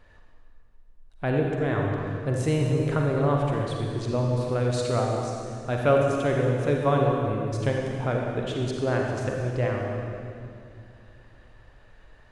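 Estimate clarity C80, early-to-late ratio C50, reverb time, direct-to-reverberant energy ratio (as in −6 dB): 1.5 dB, 0.0 dB, 2.5 s, −0.5 dB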